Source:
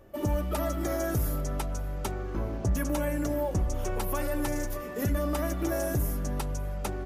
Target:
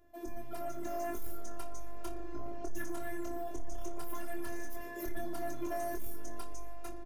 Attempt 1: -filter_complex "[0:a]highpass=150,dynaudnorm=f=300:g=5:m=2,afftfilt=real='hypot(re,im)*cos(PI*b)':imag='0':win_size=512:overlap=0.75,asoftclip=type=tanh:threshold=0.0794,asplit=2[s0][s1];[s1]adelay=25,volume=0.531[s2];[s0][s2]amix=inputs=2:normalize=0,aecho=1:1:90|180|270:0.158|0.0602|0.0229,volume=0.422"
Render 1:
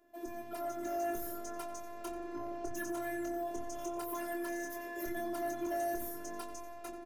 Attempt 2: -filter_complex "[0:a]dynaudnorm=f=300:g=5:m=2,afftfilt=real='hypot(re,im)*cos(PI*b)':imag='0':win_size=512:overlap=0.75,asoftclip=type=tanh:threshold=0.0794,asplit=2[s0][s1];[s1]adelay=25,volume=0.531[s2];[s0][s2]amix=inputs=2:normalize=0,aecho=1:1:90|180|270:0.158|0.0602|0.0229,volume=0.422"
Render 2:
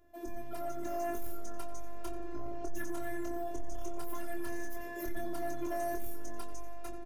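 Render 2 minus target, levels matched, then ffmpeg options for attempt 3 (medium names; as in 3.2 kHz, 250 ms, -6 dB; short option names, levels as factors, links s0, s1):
echo 31 ms late
-filter_complex "[0:a]dynaudnorm=f=300:g=5:m=2,afftfilt=real='hypot(re,im)*cos(PI*b)':imag='0':win_size=512:overlap=0.75,asoftclip=type=tanh:threshold=0.0794,asplit=2[s0][s1];[s1]adelay=25,volume=0.531[s2];[s0][s2]amix=inputs=2:normalize=0,aecho=1:1:59|118|177:0.158|0.0602|0.0229,volume=0.422"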